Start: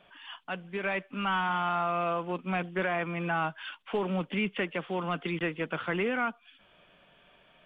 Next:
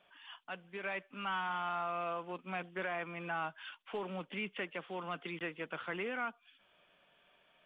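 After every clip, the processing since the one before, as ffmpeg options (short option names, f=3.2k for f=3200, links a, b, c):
-af "lowshelf=f=250:g=-9.5,volume=-7dB"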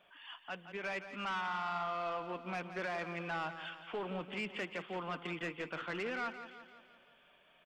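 -af "asoftclip=type=tanh:threshold=-34dB,aecho=1:1:171|342|513|684|855|1026:0.282|0.149|0.0792|0.042|0.0222|0.0118,volume=2dB"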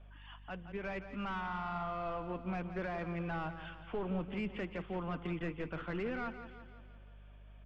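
-af "aeval=exprs='val(0)+0.000447*(sin(2*PI*50*n/s)+sin(2*PI*2*50*n/s)/2+sin(2*PI*3*50*n/s)/3+sin(2*PI*4*50*n/s)/4+sin(2*PI*5*50*n/s)/5)':c=same,aemphasis=mode=reproduction:type=riaa,volume=-2dB"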